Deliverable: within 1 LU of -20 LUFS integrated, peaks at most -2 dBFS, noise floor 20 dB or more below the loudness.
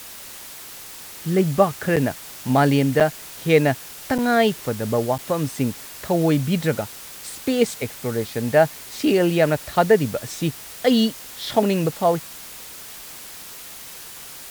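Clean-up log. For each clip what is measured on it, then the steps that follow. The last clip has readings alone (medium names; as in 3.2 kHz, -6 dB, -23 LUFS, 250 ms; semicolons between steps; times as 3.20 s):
dropouts 4; longest dropout 7.0 ms; noise floor -39 dBFS; noise floor target -42 dBFS; loudness -21.5 LUFS; peak level -3.5 dBFS; loudness target -20.0 LUFS
-> interpolate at 1.96/3.00/4.18/5.18 s, 7 ms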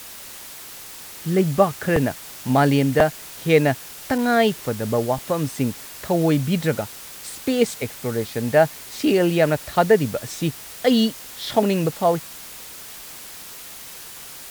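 dropouts 0; noise floor -39 dBFS; noise floor target -41 dBFS
-> noise reduction 6 dB, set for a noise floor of -39 dBFS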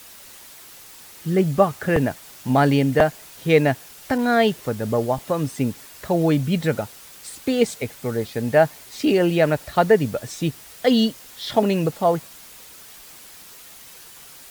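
noise floor -44 dBFS; loudness -21.5 LUFS; peak level -2.0 dBFS; loudness target -20.0 LUFS
-> trim +1.5 dB; peak limiter -2 dBFS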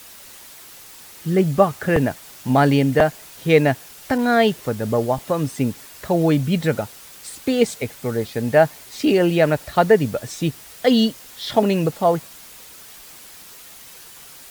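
loudness -20.0 LUFS; peak level -2.0 dBFS; noise floor -42 dBFS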